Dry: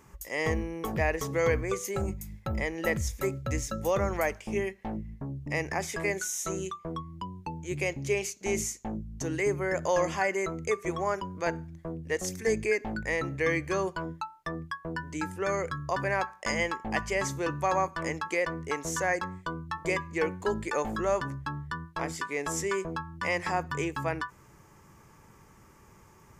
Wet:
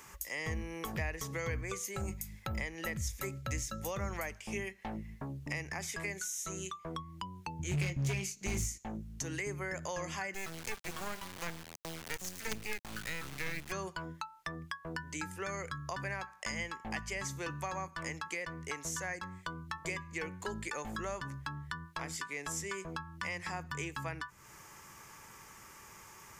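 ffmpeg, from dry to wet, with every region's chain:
-filter_complex "[0:a]asettb=1/sr,asplit=3[a][b][c];[a]atrim=end=7.594[d];[b]atrim=start=7.59:end=8.78,asetpts=PTS-STARTPTS,afade=t=in:d=0.004:c=qsin,afade=t=out:st=1.186:d=0.004:c=qsin,bass=f=250:g=11,treble=f=4k:g=-1,asplit=2[e][f];[f]adelay=21,volume=-7dB[g];[e][g]amix=inputs=2:normalize=0,atrim=end_sample=52479,asoftclip=type=hard:threshold=-23dB[h];[c]atrim=start=8.776[i];[d][h]acrossfade=d=0.004:c1=hsin:c2=qsin[j];[j][i]acrossfade=d=0.004:c1=qsin:c2=hsin,asettb=1/sr,asplit=3[k][l][m];[k]atrim=end=10.344[n];[l]atrim=start=10.34:end=13.72,asetpts=PTS-STARTPTS,afade=t=in:d=0.004:c=qsin,afade=t=out:st=3.376:d=0.004:c=qsin,bandreject=f=112.9:t=h:w=4,bandreject=f=225.8:t=h:w=4,bandreject=f=338.7:t=h:w=4,bandreject=f=451.6:t=h:w=4,bandreject=f=564.5:t=h:w=4,bandreject=f=677.4:t=h:w=4,bandreject=f=790.3:t=h:w=4,bandreject=f=903.2:t=h:w=4,bandreject=f=1.0161k:t=h:w=4,bandreject=f=1.129k:t=h:w=4,aeval=exprs='sgn(val(0))*max(abs(val(0))-0.00168,0)':c=same,acrusher=bits=4:dc=4:mix=0:aa=0.000001[o];[m]atrim=start=13.716[p];[n][o]acrossfade=d=0.004:c1=hsin:c2=qsin[q];[q][p]acrossfade=d=0.004:c1=qsin:c2=hsin,tiltshelf=f=780:g=-8,acrossover=split=230[r][s];[s]acompressor=threshold=-42dB:ratio=4[t];[r][t]amix=inputs=2:normalize=0,volume=2dB"

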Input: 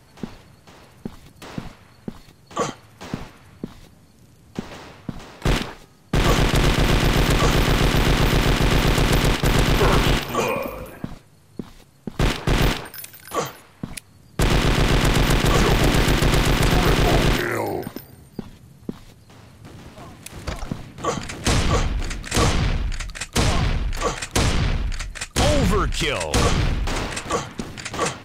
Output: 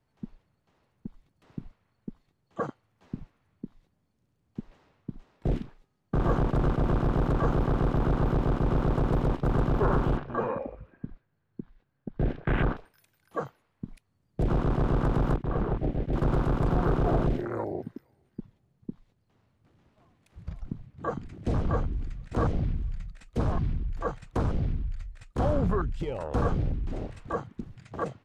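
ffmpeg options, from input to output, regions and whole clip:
-filter_complex "[0:a]asettb=1/sr,asplit=3[a][b][c];[a]atrim=end=10.174[d];[b]atrim=start=10.17:end=12.77,asetpts=PTS-STARTPTS,afade=t=in:d=0.004:c=qsin,afade=t=out:st=2.596:d=0.004:c=qsin,lowpass=3.5k,equalizer=f=1.6k:t=o:w=0.3:g=9[e];[c]atrim=start=12.766[f];[d][e]acrossfade=d=0.004:c1=hsin:c2=qsin[g];[g][f]acrossfade=d=0.004:c1=qsin:c2=hsin,asettb=1/sr,asplit=3[h][i][j];[h]atrim=end=15.364[k];[i]atrim=start=15.36:end=16.13,asetpts=PTS-STARTPTS,afade=t=in:d=0.004:c=qsin,afade=t=out:st=0.766:d=0.004:c=qsin,lowpass=3.3k,agate=range=-33dB:threshold=-14dB:ratio=3:release=100:detection=peak,aeval=exprs='sgn(val(0))*max(abs(val(0))-0.00891,0)':c=same[l];[j]atrim=start=16.126[m];[k][l]acrossfade=d=0.004:c1=hsin:c2=qsin[n];[n][m]acrossfade=d=0.004:c1=qsin:c2=hsin,asettb=1/sr,asplit=3[o][p][q];[o]atrim=end=17.324[r];[p]atrim=start=17.32:end=23.09,asetpts=PTS-STARTPTS,afade=t=in:d=0.004:c=qsin,afade=t=out:st=5.766:d=0.004:c=qsin,highshelf=f=8.5k:g=-4,aecho=1:1:462|924:0.075|0.0232,atrim=end_sample=254457[s];[q]atrim=start=23.086[t];[r][s]acrossfade=d=0.004:c1=hsin:c2=qsin[u];[u][t]acrossfade=d=0.004:c1=qsin:c2=hsin,highshelf=f=4k:g=-10,afwtdn=0.0794,volume=-6.5dB"

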